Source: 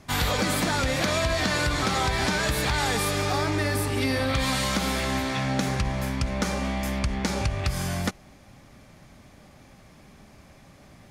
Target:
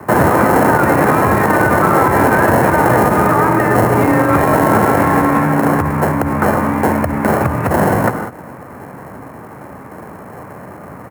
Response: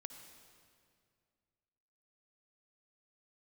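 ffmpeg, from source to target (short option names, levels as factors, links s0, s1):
-filter_complex "[1:a]atrim=start_sample=2205,afade=t=out:st=0.25:d=0.01,atrim=end_sample=11466[s0];[0:a][s0]afir=irnorm=-1:irlink=0,asplit=2[s1][s2];[s2]acompressor=threshold=0.00631:ratio=6,volume=1[s3];[s1][s3]amix=inputs=2:normalize=0,crystalizer=i=5:c=0,asuperstop=centerf=690:order=4:qfactor=2.4,acrossover=split=640|2400[s4][s5][s6];[s6]acrusher=samples=37:mix=1:aa=0.000001[s7];[s4][s5][s7]amix=inputs=3:normalize=0,highpass=70,afreqshift=21,firequalizer=gain_entry='entry(370,0);entry(1000,8);entry(3200,-18);entry(10000,1)':delay=0.05:min_phase=1,alimiter=level_in=5.31:limit=0.891:release=50:level=0:latency=1,volume=0.891"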